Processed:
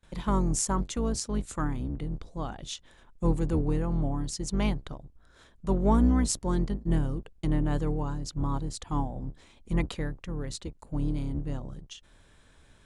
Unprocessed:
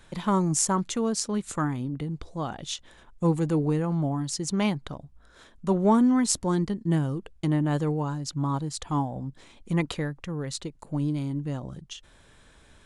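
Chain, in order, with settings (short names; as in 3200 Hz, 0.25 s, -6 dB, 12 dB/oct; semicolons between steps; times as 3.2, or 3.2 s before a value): octaver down 2 oct, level +2 dB; gate with hold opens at -45 dBFS; gain -4.5 dB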